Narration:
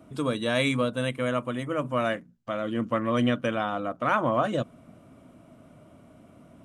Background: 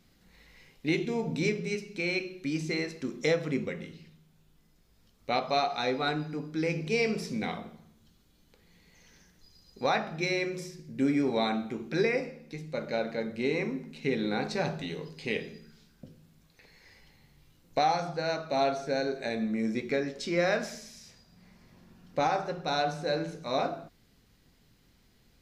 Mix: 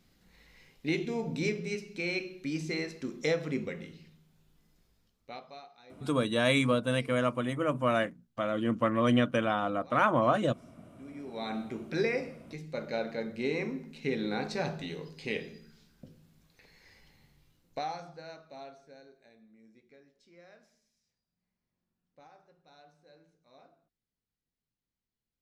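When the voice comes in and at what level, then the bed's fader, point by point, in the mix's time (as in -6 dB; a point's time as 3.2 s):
5.90 s, -1.0 dB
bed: 4.83 s -2.5 dB
5.78 s -26.5 dB
10.93 s -26.5 dB
11.62 s -2.5 dB
17.23 s -2.5 dB
19.43 s -29.5 dB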